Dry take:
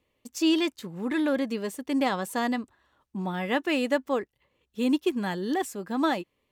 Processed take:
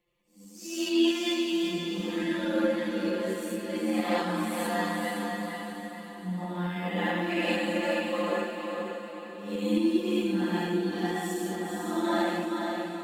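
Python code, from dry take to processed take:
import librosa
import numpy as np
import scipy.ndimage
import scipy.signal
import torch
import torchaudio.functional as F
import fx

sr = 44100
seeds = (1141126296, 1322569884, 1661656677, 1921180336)

y = fx.phase_scramble(x, sr, seeds[0], window_ms=200)
y = fx.tremolo_shape(y, sr, shape='saw_up', hz=9.0, depth_pct=30)
y = fx.stretch_grains(y, sr, factor=2.0, grain_ms=23.0)
y = fx.echo_diffused(y, sr, ms=479, feedback_pct=48, wet_db=-4)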